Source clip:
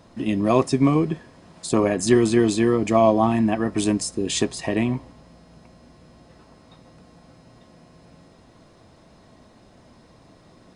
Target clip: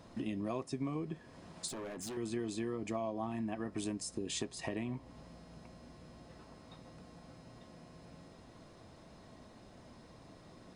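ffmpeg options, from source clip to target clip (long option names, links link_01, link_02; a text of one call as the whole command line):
ffmpeg -i in.wav -filter_complex "[0:a]acompressor=threshold=-33dB:ratio=4,asettb=1/sr,asplit=3[link_01][link_02][link_03];[link_01]atrim=end=1.684[link_04];[link_02]atrim=start=1.68:end=2.17,asetpts=PTS-STARTPTS,afade=type=in:duration=0.004:curve=qsin,afade=type=out:start_time=0.486:duration=0.004:curve=qsin,asoftclip=type=hard:threshold=-36dB[link_05];[link_03]atrim=start=2.166[link_06];[link_04][link_05]acrossfade=duration=0.004:curve1=hsin:curve2=qsin[link_07];[link_07][link_06]acrossfade=duration=0.004:curve1=qsin:curve2=hsin,volume=-4.5dB" out.wav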